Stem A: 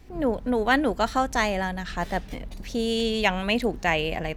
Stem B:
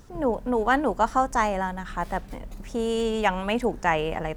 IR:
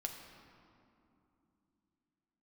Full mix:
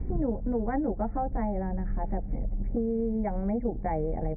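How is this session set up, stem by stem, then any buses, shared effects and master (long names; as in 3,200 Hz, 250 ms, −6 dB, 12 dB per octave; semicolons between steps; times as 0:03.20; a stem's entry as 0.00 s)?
+0.5 dB, 0.00 s, no send, tilt shelving filter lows +8 dB, about 1,100 Hz; automatic ducking −11 dB, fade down 1.30 s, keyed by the second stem
+0.5 dB, 11 ms, polarity flipped, no send, Chebyshev low-pass filter 850 Hz, order 8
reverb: not used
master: Chebyshev low-pass filter 2,300 Hz, order 10; low-shelf EQ 290 Hz +11.5 dB; downward compressor 6 to 1, threshold −26 dBFS, peak gain reduction 16 dB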